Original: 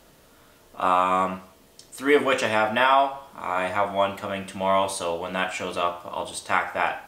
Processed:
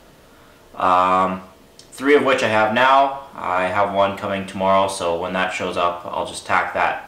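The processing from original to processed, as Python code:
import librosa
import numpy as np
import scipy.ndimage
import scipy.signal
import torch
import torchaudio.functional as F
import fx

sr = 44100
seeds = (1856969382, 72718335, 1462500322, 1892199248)

p1 = fx.high_shelf(x, sr, hz=5600.0, db=-8.0)
p2 = 10.0 ** (-21.5 / 20.0) * np.tanh(p1 / 10.0 ** (-21.5 / 20.0))
p3 = p1 + F.gain(torch.from_numpy(p2), -3.5).numpy()
y = F.gain(torch.from_numpy(p3), 3.0).numpy()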